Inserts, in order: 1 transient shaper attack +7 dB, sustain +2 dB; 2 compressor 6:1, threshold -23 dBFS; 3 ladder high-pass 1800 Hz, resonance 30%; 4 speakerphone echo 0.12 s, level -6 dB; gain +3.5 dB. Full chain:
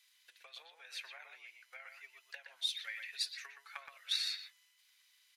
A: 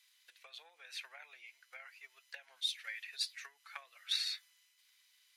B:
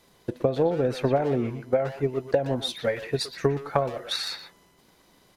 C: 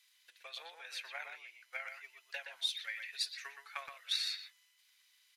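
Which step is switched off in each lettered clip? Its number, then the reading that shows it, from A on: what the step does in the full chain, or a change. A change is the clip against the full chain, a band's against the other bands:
4, echo-to-direct -13.0 dB to none; 3, 500 Hz band +36.0 dB; 2, mean gain reduction 3.5 dB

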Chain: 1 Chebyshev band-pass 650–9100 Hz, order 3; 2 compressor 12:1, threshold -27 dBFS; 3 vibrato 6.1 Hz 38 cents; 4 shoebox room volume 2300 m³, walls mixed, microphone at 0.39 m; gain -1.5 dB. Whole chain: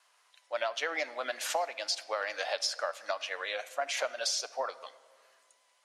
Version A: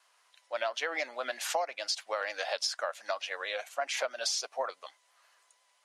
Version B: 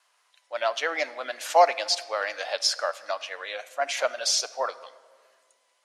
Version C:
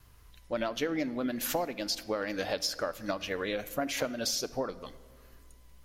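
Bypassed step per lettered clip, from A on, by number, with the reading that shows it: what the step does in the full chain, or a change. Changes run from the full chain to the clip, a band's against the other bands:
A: 4, echo-to-direct -14.0 dB to none; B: 2, mean gain reduction 4.0 dB; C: 1, 250 Hz band +22.5 dB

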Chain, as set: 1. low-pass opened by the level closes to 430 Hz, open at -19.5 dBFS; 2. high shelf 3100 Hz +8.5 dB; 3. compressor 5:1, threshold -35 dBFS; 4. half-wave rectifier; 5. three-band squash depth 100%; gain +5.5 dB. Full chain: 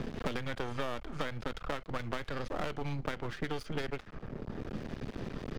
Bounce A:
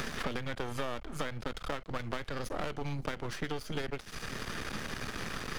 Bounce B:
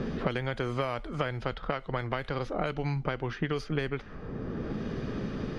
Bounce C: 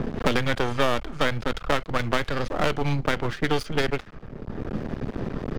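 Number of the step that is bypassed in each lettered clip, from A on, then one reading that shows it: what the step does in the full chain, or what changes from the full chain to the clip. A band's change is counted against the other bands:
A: 1, 8 kHz band +9.0 dB; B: 4, 4 kHz band -3.5 dB; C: 3, mean gain reduction 8.5 dB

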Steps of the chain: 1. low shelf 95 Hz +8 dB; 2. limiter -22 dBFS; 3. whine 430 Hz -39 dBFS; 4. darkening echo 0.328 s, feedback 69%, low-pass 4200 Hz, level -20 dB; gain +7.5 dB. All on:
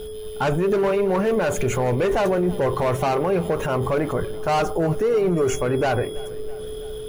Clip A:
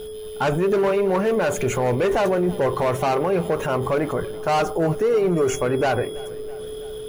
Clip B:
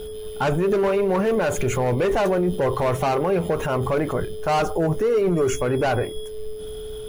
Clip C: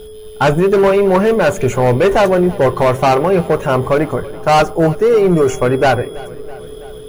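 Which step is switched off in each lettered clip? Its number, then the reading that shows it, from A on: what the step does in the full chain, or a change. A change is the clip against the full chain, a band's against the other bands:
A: 1, 125 Hz band -2.0 dB; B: 4, echo-to-direct -18.0 dB to none; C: 2, mean gain reduction 5.0 dB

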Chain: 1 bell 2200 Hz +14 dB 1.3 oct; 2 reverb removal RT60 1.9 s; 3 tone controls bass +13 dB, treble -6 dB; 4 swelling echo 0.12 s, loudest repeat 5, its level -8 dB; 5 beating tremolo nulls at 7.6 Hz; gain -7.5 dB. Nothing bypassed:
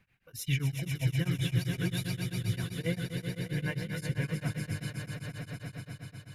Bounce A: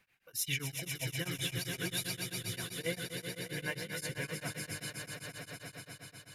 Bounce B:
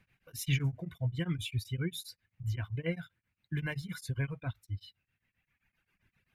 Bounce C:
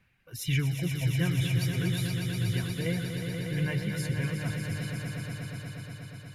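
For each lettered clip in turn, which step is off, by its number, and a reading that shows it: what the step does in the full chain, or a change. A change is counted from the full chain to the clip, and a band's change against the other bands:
3, 125 Hz band -11.5 dB; 4, crest factor change +4.0 dB; 5, crest factor change -3.0 dB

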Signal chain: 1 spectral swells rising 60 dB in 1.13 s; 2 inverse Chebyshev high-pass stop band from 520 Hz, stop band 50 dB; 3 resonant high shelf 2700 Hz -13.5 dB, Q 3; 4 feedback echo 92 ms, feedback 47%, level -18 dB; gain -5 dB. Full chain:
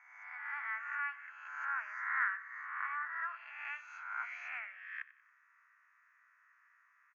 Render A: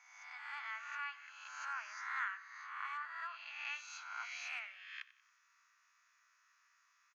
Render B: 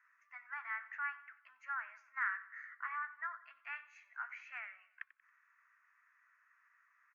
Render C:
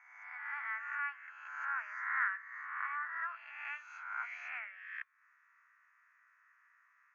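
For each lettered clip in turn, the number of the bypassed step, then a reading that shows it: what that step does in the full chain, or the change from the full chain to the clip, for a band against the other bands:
3, momentary loudness spread change -2 LU; 1, crest factor change +2.5 dB; 4, echo-to-direct -17.0 dB to none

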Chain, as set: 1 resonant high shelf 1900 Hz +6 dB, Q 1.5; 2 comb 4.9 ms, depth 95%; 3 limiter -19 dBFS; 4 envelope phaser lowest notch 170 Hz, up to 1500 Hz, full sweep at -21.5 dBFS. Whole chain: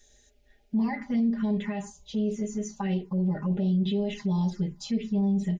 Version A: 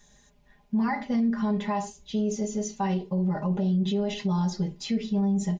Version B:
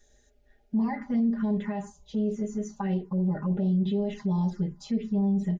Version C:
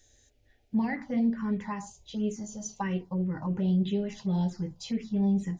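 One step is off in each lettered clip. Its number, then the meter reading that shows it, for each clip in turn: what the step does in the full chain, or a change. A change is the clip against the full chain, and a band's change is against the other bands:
4, 1 kHz band +5.5 dB; 1, 2 kHz band -3.5 dB; 2, 1 kHz band +3.0 dB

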